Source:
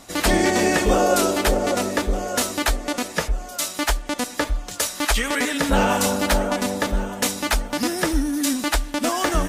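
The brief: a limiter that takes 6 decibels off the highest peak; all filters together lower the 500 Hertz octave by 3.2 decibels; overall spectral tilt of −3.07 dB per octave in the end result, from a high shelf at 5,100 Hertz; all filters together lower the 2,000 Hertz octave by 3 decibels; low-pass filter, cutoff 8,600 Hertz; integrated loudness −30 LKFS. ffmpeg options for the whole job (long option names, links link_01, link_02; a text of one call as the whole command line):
ffmpeg -i in.wav -af "lowpass=8600,equalizer=frequency=500:width_type=o:gain=-4,equalizer=frequency=2000:width_type=o:gain=-4.5,highshelf=frequency=5100:gain=6,volume=-5.5dB,alimiter=limit=-18dB:level=0:latency=1" out.wav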